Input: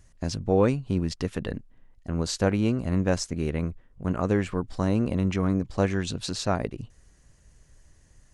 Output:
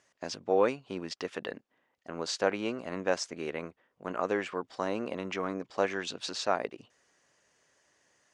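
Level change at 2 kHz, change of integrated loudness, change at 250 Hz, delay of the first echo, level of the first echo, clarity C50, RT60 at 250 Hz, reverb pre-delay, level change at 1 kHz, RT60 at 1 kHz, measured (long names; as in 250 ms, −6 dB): 0.0 dB, −6.0 dB, −11.5 dB, no echo audible, no echo audible, no reverb audible, no reverb audible, no reverb audible, −0.5 dB, no reverb audible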